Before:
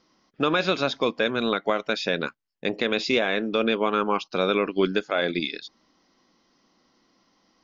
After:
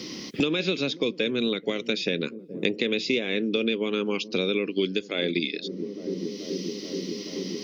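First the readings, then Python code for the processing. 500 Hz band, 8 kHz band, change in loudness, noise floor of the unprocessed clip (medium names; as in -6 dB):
-2.0 dB, no reading, -3.0 dB, -67 dBFS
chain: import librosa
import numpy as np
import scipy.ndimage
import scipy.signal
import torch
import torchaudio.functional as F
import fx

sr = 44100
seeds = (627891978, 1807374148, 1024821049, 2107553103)

p1 = scipy.signal.sosfilt(scipy.signal.butter(2, 110.0, 'highpass', fs=sr, output='sos'), x)
p2 = fx.band_shelf(p1, sr, hz=1000.0, db=-15.5, octaves=1.7)
p3 = p2 + fx.echo_wet_lowpass(p2, sr, ms=430, feedback_pct=67, hz=410.0, wet_db=-19.0, dry=0)
y = fx.band_squash(p3, sr, depth_pct=100)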